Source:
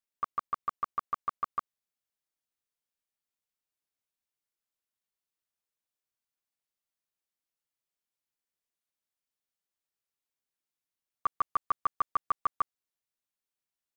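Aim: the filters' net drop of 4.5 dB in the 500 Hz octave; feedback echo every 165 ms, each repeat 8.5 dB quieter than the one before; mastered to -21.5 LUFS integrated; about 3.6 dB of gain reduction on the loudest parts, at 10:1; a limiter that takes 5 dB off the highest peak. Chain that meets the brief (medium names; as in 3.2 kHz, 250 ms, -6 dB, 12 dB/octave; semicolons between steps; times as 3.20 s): peaking EQ 500 Hz -6 dB; compression 10:1, threshold -28 dBFS; peak limiter -25 dBFS; feedback delay 165 ms, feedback 38%, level -8.5 dB; trim +18.5 dB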